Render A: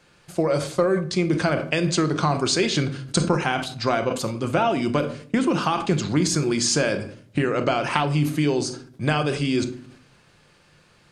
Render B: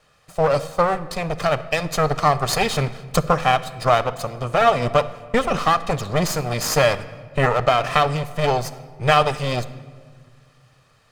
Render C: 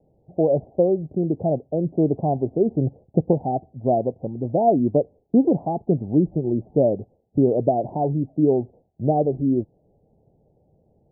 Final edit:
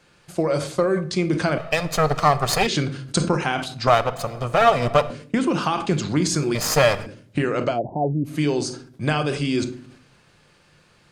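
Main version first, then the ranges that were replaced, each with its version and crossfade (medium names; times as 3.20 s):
A
1.58–2.67 s: from B
3.87–5.10 s: from B
6.55–7.06 s: from B
7.72–8.32 s: from C, crossfade 0.16 s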